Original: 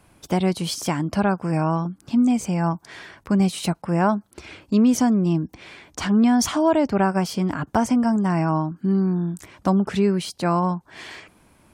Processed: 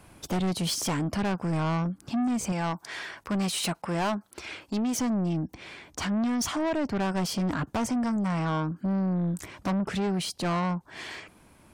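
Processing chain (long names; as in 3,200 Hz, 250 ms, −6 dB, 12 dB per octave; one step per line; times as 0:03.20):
0:02.52–0:04.99: low-shelf EQ 330 Hz −11.5 dB
speech leveller within 4 dB 0.5 s
soft clipping −24 dBFS, distortion −8 dB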